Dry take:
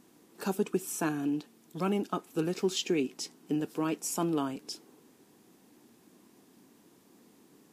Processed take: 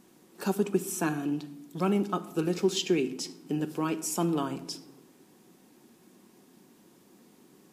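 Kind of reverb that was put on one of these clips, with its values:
rectangular room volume 3,200 cubic metres, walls furnished, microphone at 1 metre
level +1.5 dB

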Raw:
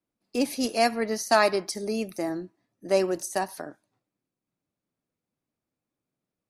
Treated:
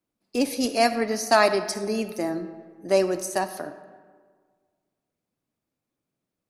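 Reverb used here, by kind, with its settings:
comb and all-pass reverb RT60 1.7 s, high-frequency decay 0.55×, pre-delay 15 ms, DRR 11.5 dB
level +2 dB

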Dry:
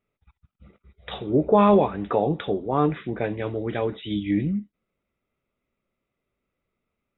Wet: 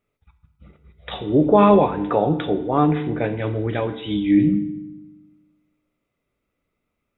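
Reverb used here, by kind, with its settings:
feedback delay network reverb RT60 0.97 s, low-frequency decay 1.5×, high-frequency decay 0.9×, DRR 9 dB
level +3 dB

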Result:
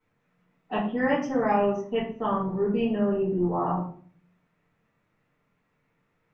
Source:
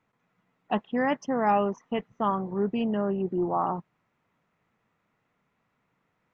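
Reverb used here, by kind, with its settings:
rectangular room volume 46 cubic metres, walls mixed, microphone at 2.1 metres
level −9.5 dB

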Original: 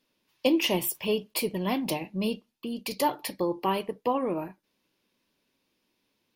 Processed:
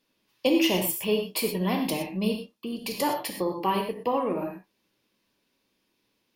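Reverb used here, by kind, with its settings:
reverb whose tail is shaped and stops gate 140 ms flat, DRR 3 dB

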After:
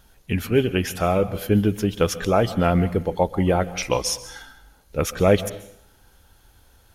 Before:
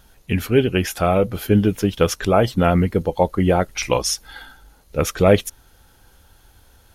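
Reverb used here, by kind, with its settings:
dense smooth reverb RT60 0.7 s, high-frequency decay 0.9×, pre-delay 120 ms, DRR 15 dB
level −3 dB

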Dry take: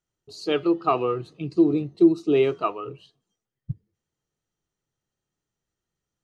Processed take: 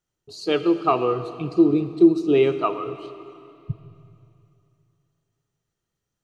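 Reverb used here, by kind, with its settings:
comb and all-pass reverb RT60 2.8 s, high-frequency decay 1×, pre-delay 0 ms, DRR 11 dB
level +2 dB

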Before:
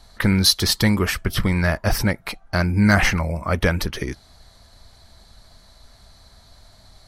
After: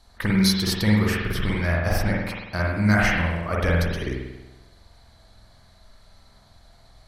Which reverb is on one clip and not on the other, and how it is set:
spring reverb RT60 1 s, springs 47 ms, chirp 70 ms, DRR −3.5 dB
level −7.5 dB

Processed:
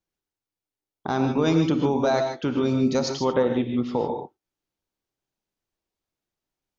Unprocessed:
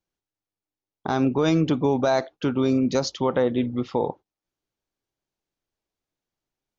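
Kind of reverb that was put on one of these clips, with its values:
reverb whose tail is shaped and stops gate 170 ms rising, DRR 4.5 dB
level −1.5 dB

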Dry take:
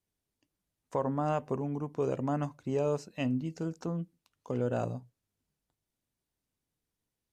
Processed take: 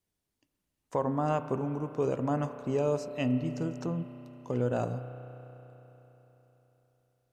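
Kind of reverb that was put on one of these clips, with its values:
spring reverb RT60 3.9 s, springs 32 ms, chirp 65 ms, DRR 9.5 dB
level +1.5 dB

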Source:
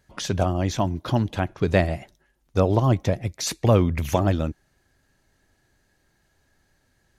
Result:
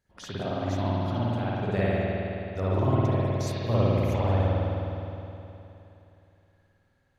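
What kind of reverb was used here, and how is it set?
spring reverb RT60 3.1 s, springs 52 ms, chirp 25 ms, DRR −10 dB
level −14.5 dB

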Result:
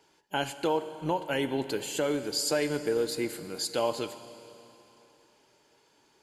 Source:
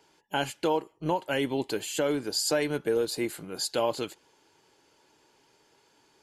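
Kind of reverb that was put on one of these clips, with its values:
four-comb reverb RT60 3.1 s, combs from 30 ms, DRR 11.5 dB
level −1.5 dB

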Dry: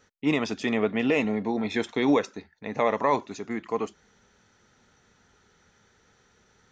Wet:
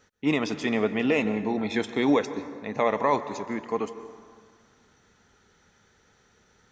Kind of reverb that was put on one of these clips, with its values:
dense smooth reverb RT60 1.9 s, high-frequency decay 0.5×, pre-delay 115 ms, DRR 12.5 dB

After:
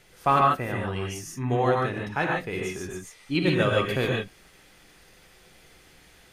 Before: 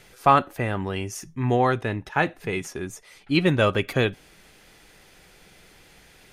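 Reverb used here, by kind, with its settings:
reverb whose tail is shaped and stops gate 170 ms rising, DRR −1.5 dB
level −5.5 dB

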